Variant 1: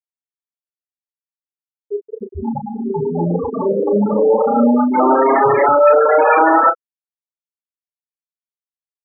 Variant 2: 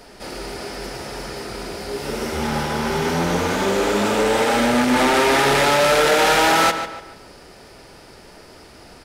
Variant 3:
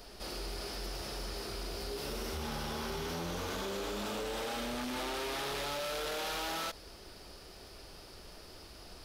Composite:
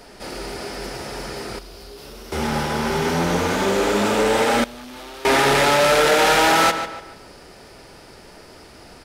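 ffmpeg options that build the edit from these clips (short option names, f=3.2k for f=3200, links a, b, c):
-filter_complex "[2:a]asplit=2[a][b];[1:a]asplit=3[c][d][e];[c]atrim=end=1.592[f];[a]atrim=start=1.588:end=2.322[g];[d]atrim=start=2.318:end=4.642[h];[b]atrim=start=4.638:end=5.252[i];[e]atrim=start=5.248[j];[f][g]acrossfade=d=0.004:c1=hsin:c2=hsin[k];[k][h]acrossfade=d=0.004:c1=hsin:c2=hsin[l];[l][i]acrossfade=d=0.004:c1=hsin:c2=hsin[m];[m][j]acrossfade=d=0.004:c1=hsin:c2=hsin"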